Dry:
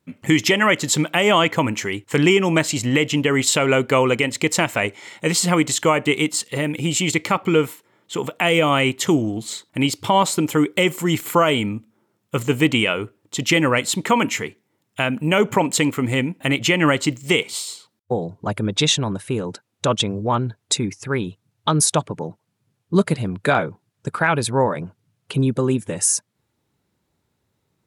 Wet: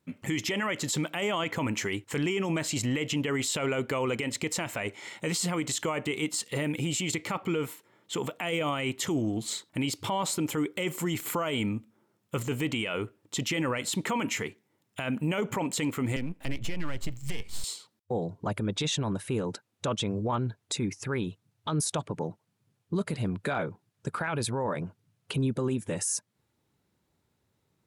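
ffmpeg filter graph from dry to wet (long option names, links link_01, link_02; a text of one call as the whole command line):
ffmpeg -i in.wav -filter_complex "[0:a]asettb=1/sr,asplit=3[link_01][link_02][link_03];[link_01]atrim=end=16.164[link_04];[link_02]atrim=start=16.16:end=17.64,asetpts=PTS-STARTPTS,afade=type=in:duration=0.004:curve=qsin,afade=type=out:start_time=1.476:duration=0.004:curve=qsin,aeval=exprs='if(lt(val(0),0),0.251*val(0),val(0))':channel_layout=same,asubboost=boost=11.5:cutoff=130,acrossover=split=260|620[link_05][link_06][link_07];[link_05]acompressor=threshold=-20dB:ratio=4[link_08];[link_06]acompressor=threshold=-39dB:ratio=4[link_09];[link_07]acompressor=threshold=-34dB:ratio=4[link_10];[link_08][link_09][link_10]amix=inputs=3:normalize=0[link_11];[link_03]atrim=start=17.636[link_12];[link_04][link_11]acrossfade=duration=0.004:curve1=hsin:curve2=qsin[link_13];[link_13][link_12]acrossfade=duration=0.004:curve1=qsin:curve2=hsin,acompressor=threshold=-24dB:ratio=1.5,alimiter=limit=-17.5dB:level=0:latency=1:release=15,volume=-3.5dB" out.wav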